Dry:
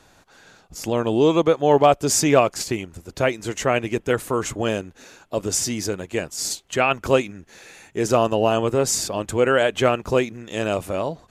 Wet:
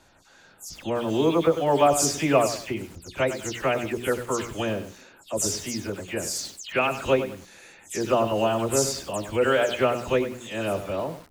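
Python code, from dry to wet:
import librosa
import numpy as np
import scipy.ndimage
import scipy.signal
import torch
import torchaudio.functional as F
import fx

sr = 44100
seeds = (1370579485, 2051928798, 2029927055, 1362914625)

y = fx.spec_delay(x, sr, highs='early', ms=150)
y = fx.hum_notches(y, sr, base_hz=60, count=7)
y = fx.echo_crushed(y, sr, ms=97, feedback_pct=35, bits=6, wet_db=-10)
y = y * 10.0 ** (-3.5 / 20.0)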